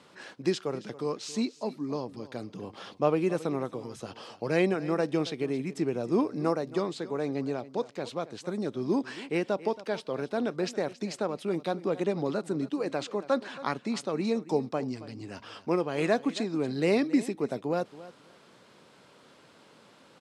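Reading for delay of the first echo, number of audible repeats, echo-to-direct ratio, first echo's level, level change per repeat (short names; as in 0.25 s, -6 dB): 0.275 s, 2, -17.0 dB, -17.0 dB, -16.5 dB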